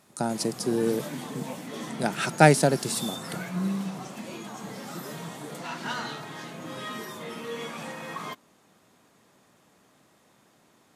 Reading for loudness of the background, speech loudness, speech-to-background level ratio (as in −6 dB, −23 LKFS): −37.0 LKFS, −25.5 LKFS, 11.5 dB